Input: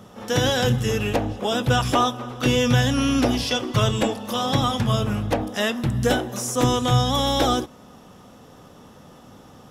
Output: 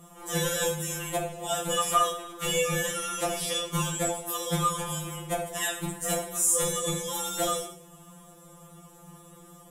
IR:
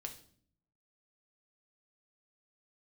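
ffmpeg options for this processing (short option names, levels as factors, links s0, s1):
-filter_complex "[0:a]highshelf=f=6500:t=q:w=3:g=9[s0];[1:a]atrim=start_sample=2205,afade=t=out:st=0.29:d=0.01,atrim=end_sample=13230,asetrate=35280,aresample=44100[s1];[s0][s1]afir=irnorm=-1:irlink=0,afftfilt=real='re*2.83*eq(mod(b,8),0)':imag='im*2.83*eq(mod(b,8),0)':win_size=2048:overlap=0.75"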